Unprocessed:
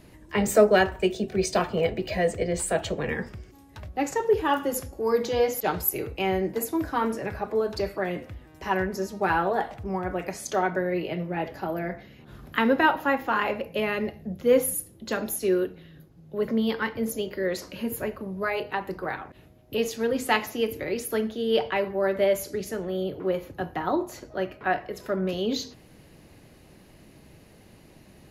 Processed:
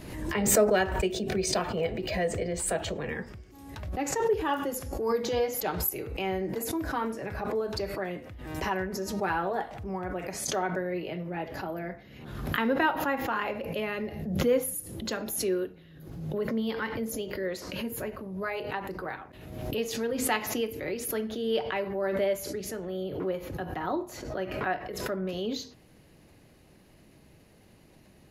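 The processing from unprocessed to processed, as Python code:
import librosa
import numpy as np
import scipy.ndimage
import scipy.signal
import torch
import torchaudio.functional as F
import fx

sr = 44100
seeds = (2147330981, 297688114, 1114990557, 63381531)

y = fx.pre_swell(x, sr, db_per_s=49.0)
y = y * librosa.db_to_amplitude(-5.5)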